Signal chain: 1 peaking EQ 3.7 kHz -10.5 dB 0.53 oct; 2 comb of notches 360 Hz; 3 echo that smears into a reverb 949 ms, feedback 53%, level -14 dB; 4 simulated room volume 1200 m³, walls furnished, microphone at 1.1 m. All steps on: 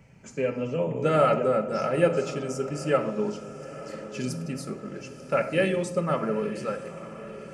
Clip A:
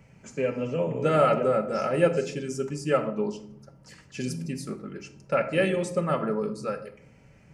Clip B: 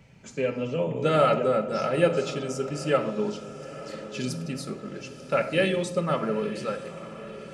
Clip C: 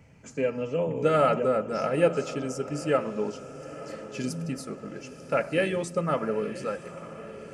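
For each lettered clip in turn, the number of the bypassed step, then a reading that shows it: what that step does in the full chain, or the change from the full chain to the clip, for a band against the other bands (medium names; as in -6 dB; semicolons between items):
3, momentary loudness spread change -1 LU; 1, 4 kHz band +5.0 dB; 4, echo-to-direct -5.5 dB to -12.5 dB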